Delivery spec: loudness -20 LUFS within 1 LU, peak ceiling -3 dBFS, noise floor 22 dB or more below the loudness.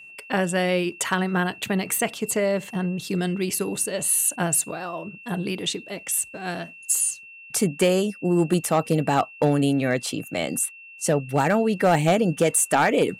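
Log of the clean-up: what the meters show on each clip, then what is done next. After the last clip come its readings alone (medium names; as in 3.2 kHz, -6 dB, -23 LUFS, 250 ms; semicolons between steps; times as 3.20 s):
clipped samples 0.4%; clipping level -12.0 dBFS; steady tone 2.7 kHz; tone level -42 dBFS; loudness -23.0 LUFS; peak level -12.0 dBFS; loudness target -20.0 LUFS
-> clip repair -12 dBFS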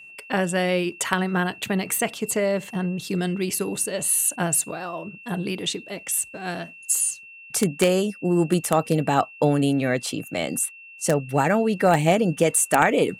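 clipped samples 0.0%; steady tone 2.7 kHz; tone level -42 dBFS
-> band-stop 2.7 kHz, Q 30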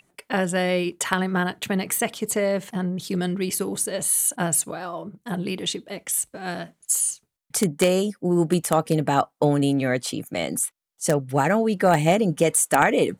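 steady tone not found; loudness -23.0 LUFS; peak level -3.0 dBFS; loudness target -20.0 LUFS
-> trim +3 dB; peak limiter -3 dBFS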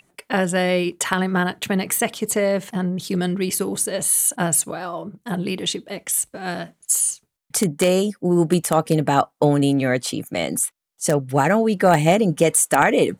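loudness -20.0 LUFS; peak level -3.0 dBFS; noise floor -72 dBFS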